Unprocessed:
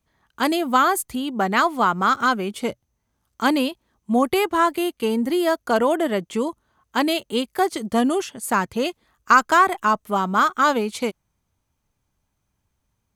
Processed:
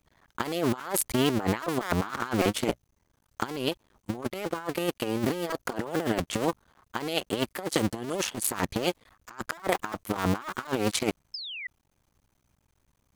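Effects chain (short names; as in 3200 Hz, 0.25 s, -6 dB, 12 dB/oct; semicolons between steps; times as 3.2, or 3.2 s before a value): cycle switcher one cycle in 2, muted; painted sound fall, 11.34–11.67, 1900–5300 Hz -20 dBFS; negative-ratio compressor -28 dBFS, ratio -0.5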